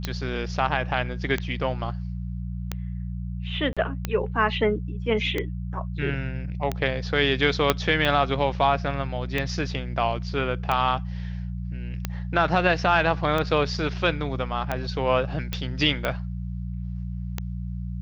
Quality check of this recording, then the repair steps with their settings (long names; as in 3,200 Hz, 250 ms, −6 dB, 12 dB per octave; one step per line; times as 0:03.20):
mains hum 60 Hz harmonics 3 −31 dBFS
scratch tick 45 rpm −12 dBFS
0:03.73–0:03.77: drop-out 36 ms
0:07.70: click −3 dBFS
0:15.53: click −13 dBFS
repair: click removal
hum removal 60 Hz, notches 3
repair the gap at 0:03.73, 36 ms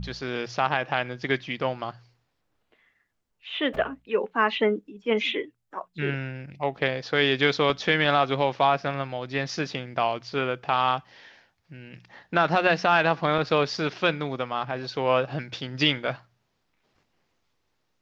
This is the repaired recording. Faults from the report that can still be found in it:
0:07.70: click